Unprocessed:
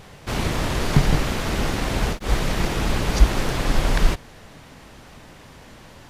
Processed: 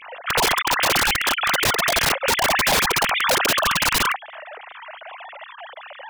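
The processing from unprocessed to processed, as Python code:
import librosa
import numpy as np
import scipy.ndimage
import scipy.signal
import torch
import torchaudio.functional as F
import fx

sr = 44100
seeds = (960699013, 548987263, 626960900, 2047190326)

y = fx.sine_speech(x, sr)
y = (np.mod(10.0 ** (13.0 / 20.0) * y + 1.0, 2.0) - 1.0) / 10.0 ** (13.0 / 20.0)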